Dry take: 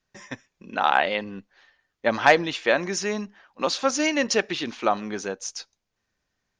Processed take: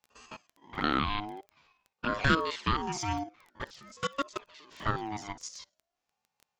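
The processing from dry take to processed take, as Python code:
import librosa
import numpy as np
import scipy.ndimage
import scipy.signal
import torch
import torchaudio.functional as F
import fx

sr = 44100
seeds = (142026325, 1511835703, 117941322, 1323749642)

y = fx.spec_steps(x, sr, hold_ms=50)
y = fx.level_steps(y, sr, step_db=23, at=(3.64, 4.77))
y = fx.env_flanger(y, sr, rest_ms=3.1, full_db=-22.0)
y = fx.dmg_crackle(y, sr, seeds[0], per_s=10.0, level_db=-38.0)
y = fx.ring_lfo(y, sr, carrier_hz=670.0, swing_pct=25, hz=0.47)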